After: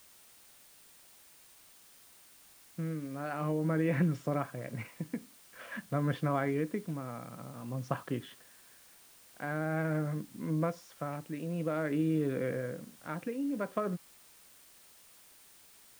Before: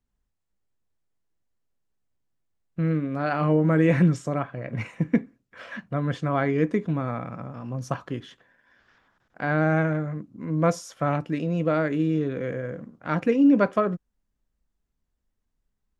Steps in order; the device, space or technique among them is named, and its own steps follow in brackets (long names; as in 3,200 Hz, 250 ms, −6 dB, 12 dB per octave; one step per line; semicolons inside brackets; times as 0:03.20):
medium wave at night (band-pass filter 100–3,900 Hz; downward compressor, threshold −22 dBFS, peak gain reduction 8 dB; amplitude tremolo 0.49 Hz, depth 61%; steady tone 9,000 Hz −63 dBFS; white noise bed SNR 23 dB)
level −3 dB